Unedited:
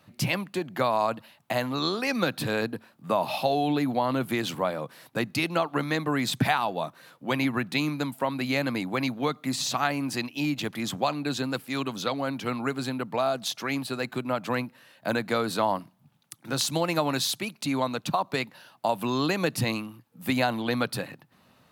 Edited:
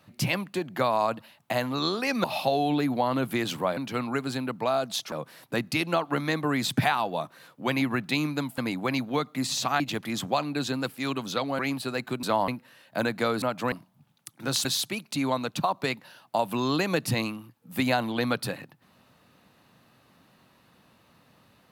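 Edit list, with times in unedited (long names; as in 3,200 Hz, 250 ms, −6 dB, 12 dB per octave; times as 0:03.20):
0:02.24–0:03.22: remove
0:08.21–0:08.67: remove
0:09.89–0:10.50: remove
0:12.29–0:13.64: move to 0:04.75
0:14.28–0:14.58: swap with 0:15.52–0:15.77
0:16.70–0:17.15: remove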